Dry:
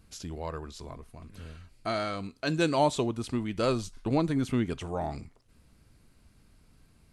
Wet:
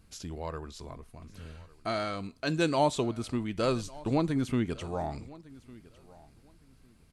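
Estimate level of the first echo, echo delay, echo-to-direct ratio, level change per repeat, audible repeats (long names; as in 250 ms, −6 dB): −21.5 dB, 1,154 ms, −21.5 dB, repeats not evenly spaced, 1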